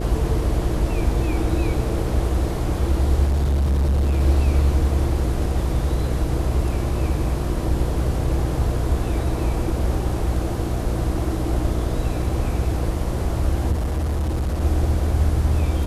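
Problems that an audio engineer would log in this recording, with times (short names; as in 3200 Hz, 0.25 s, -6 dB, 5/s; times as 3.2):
buzz 60 Hz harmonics 10 -25 dBFS
3.26–4.21 clipped -16 dBFS
13.71–14.62 clipped -19 dBFS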